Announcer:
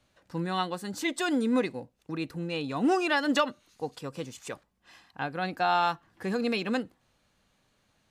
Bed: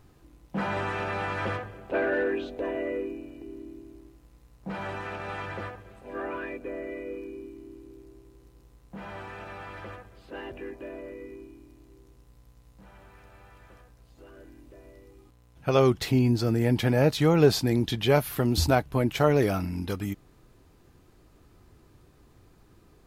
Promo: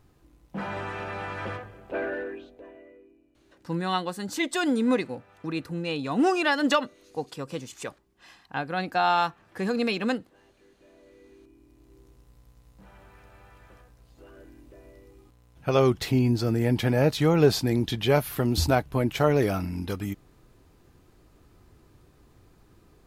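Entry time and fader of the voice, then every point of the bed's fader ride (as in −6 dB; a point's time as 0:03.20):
3.35 s, +2.5 dB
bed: 0:02.04 −3.5 dB
0:02.98 −22 dB
0:10.61 −22 dB
0:11.99 0 dB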